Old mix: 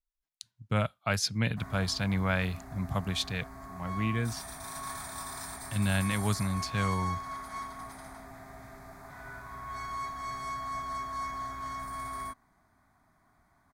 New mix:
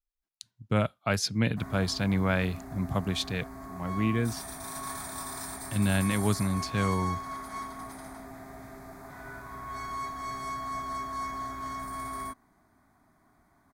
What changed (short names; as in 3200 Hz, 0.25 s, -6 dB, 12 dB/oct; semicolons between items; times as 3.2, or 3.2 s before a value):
background: add high shelf 8400 Hz +5 dB; master: add bell 330 Hz +7.5 dB 1.5 oct